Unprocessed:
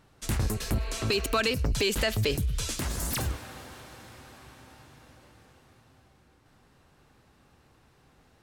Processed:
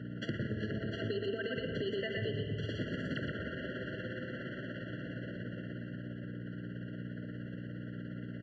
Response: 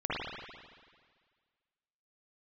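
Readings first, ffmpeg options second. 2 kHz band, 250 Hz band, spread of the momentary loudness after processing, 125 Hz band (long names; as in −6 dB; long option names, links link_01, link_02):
−5.5 dB, −1.0 dB, 7 LU, −6.0 dB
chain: -filter_complex "[0:a]aecho=1:1:121:0.596,tremolo=f=17:d=0.57,lowpass=frequency=2900:width=0.5412,lowpass=frequency=2900:width=1.3066,alimiter=level_in=0.5dB:limit=-24dB:level=0:latency=1:release=71,volume=-0.5dB,asplit=2[link_01][link_02];[1:a]atrim=start_sample=2205[link_03];[link_02][link_03]afir=irnorm=-1:irlink=0,volume=-12dB[link_04];[link_01][link_04]amix=inputs=2:normalize=0,aeval=exprs='val(0)+0.00355*(sin(2*PI*60*n/s)+sin(2*PI*2*60*n/s)/2+sin(2*PI*3*60*n/s)/3+sin(2*PI*4*60*n/s)/4+sin(2*PI*5*60*n/s)/5)':channel_layout=same,highpass=frequency=120:width=0.5412,highpass=frequency=120:width=1.3066,acompressor=threshold=-51dB:ratio=4,afftfilt=real='re*eq(mod(floor(b*sr/1024/680),2),0)':imag='im*eq(mod(floor(b*sr/1024/680),2),0)':win_size=1024:overlap=0.75,volume=14.5dB"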